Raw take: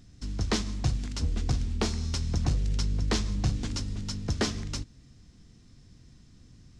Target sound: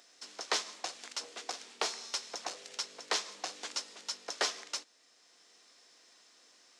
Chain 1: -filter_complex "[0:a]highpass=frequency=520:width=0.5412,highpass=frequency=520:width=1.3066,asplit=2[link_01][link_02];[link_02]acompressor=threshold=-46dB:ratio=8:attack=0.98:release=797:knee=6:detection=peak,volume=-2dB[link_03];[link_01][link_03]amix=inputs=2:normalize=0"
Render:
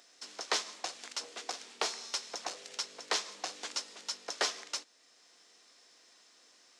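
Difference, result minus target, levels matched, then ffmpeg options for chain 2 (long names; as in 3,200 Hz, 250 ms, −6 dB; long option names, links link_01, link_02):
downward compressor: peak gain reduction −6 dB
-filter_complex "[0:a]highpass=frequency=520:width=0.5412,highpass=frequency=520:width=1.3066,asplit=2[link_01][link_02];[link_02]acompressor=threshold=-53dB:ratio=8:attack=0.98:release=797:knee=6:detection=peak,volume=-2dB[link_03];[link_01][link_03]amix=inputs=2:normalize=0"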